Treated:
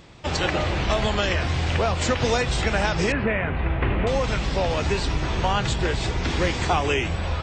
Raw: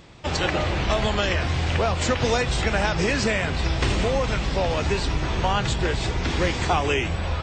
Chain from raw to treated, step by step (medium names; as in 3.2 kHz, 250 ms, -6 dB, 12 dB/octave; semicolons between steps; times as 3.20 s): 3.12–4.07 s: inverse Chebyshev low-pass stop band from 6.1 kHz, stop band 50 dB